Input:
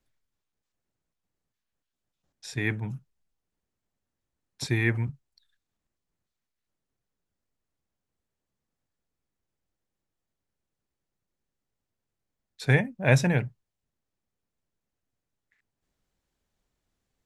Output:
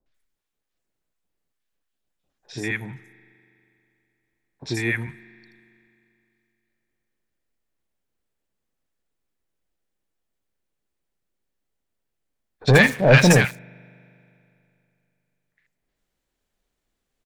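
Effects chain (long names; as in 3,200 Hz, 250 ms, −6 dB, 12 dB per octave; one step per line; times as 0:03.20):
parametric band 110 Hz −7.5 dB 2 octaves
mains-hum notches 50/100 Hz
spring reverb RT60 2.9 s, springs 40 ms, chirp 65 ms, DRR 18.5 dB
0:12.61–0:13.45: leveller curve on the samples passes 3
three-band delay without the direct sound lows, mids, highs 60/140 ms, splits 1,000/5,700 Hz
level +4 dB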